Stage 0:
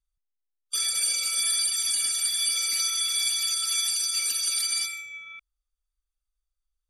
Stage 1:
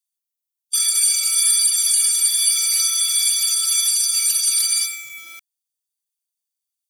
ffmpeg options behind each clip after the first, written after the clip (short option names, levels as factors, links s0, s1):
-filter_complex "[0:a]acrossover=split=2100[s0][s1];[s0]acrusher=bits=7:mix=0:aa=0.000001[s2];[s2][s1]amix=inputs=2:normalize=0,crystalizer=i=2:c=0"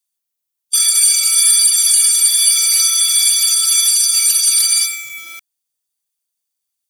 -af "acontrast=24,volume=1.12"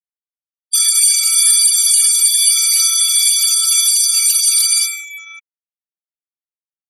-af "afftfilt=real='re*gte(hypot(re,im),0.0447)':imag='im*gte(hypot(re,im),0.0447)':win_size=1024:overlap=0.75"